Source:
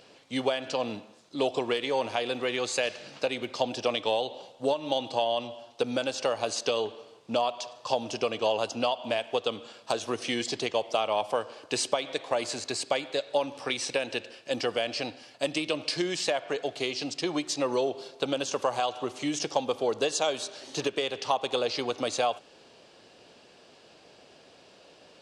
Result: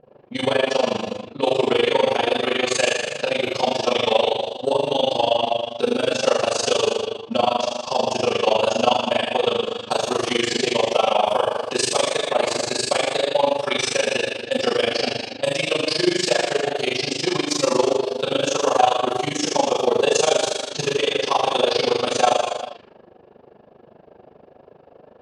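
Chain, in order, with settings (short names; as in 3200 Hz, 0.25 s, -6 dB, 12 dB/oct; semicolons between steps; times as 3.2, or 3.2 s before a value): non-linear reverb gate 0.48 s falling, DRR -7.5 dB; low-pass opened by the level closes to 610 Hz, open at -24 dBFS; AM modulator 25 Hz, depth 80%; gain +5 dB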